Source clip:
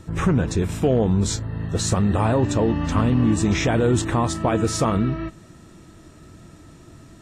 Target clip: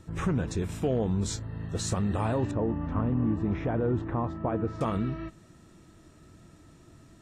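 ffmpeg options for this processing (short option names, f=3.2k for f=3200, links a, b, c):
-filter_complex "[0:a]asettb=1/sr,asplit=3[a][b][c];[a]atrim=end=2.514[d];[b]atrim=start=2.51:end=4.81,asetpts=PTS-STARTPTS,afade=t=in:d=0.004:c=qsin,afade=t=out:st=2.296:d=0.004:c=qsin,lowpass=1.3k[e];[c]atrim=start=4.806[f];[d][e]acrossfade=d=0.004:c1=hsin:c2=qsin[g];[g][f]acrossfade=d=0.004:c1=qsin:c2=hsin,volume=-8.5dB"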